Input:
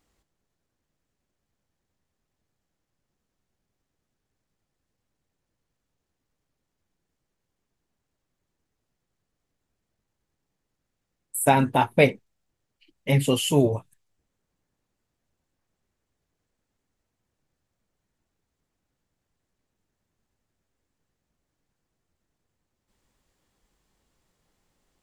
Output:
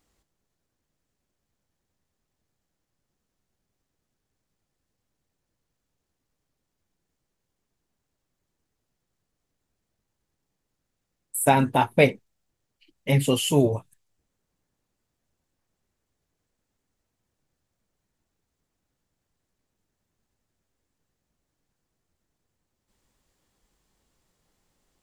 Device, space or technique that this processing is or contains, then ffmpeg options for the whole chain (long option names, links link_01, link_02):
exciter from parts: -filter_complex "[0:a]asplit=2[link_01][link_02];[link_02]highpass=3100,asoftclip=type=tanh:threshold=-38.5dB,volume=-11dB[link_03];[link_01][link_03]amix=inputs=2:normalize=0"